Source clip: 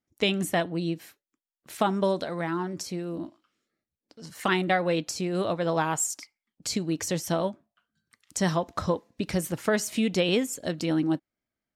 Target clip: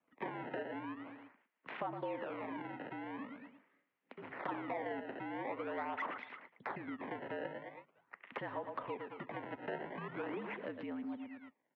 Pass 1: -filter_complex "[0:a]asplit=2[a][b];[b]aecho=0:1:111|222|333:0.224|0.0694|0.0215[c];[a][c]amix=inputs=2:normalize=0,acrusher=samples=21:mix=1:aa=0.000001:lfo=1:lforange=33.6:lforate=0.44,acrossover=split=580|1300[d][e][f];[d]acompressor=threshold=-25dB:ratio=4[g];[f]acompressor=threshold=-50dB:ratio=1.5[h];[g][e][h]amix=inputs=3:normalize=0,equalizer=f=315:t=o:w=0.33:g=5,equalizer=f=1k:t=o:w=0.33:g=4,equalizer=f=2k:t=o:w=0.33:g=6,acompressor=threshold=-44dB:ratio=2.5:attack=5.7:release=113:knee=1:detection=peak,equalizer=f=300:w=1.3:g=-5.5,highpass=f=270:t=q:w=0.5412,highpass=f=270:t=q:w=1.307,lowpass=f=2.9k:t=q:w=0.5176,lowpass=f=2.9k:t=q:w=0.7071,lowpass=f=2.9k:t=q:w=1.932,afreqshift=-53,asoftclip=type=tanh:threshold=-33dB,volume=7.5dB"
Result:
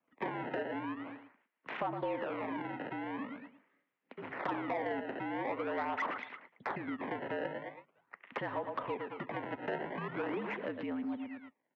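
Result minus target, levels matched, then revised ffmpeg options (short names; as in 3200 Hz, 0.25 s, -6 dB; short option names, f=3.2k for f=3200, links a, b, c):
compressor: peak gain reduction -5 dB
-filter_complex "[0:a]asplit=2[a][b];[b]aecho=0:1:111|222|333:0.224|0.0694|0.0215[c];[a][c]amix=inputs=2:normalize=0,acrusher=samples=21:mix=1:aa=0.000001:lfo=1:lforange=33.6:lforate=0.44,acrossover=split=580|1300[d][e][f];[d]acompressor=threshold=-25dB:ratio=4[g];[f]acompressor=threshold=-50dB:ratio=1.5[h];[g][e][h]amix=inputs=3:normalize=0,equalizer=f=315:t=o:w=0.33:g=5,equalizer=f=1k:t=o:w=0.33:g=4,equalizer=f=2k:t=o:w=0.33:g=6,acompressor=threshold=-52.5dB:ratio=2.5:attack=5.7:release=113:knee=1:detection=peak,equalizer=f=300:w=1.3:g=-5.5,highpass=f=270:t=q:w=0.5412,highpass=f=270:t=q:w=1.307,lowpass=f=2.9k:t=q:w=0.5176,lowpass=f=2.9k:t=q:w=0.7071,lowpass=f=2.9k:t=q:w=1.932,afreqshift=-53,asoftclip=type=tanh:threshold=-33dB,volume=7.5dB"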